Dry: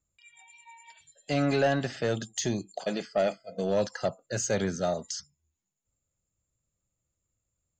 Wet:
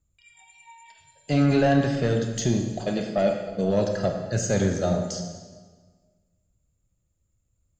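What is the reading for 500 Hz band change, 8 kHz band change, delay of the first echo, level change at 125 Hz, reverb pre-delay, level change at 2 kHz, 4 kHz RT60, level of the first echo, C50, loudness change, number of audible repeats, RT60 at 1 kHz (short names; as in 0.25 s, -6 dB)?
+4.0 dB, +1.5 dB, none, +9.5 dB, 22 ms, +2.0 dB, 1.2 s, none, 5.0 dB, +5.5 dB, none, 1.4 s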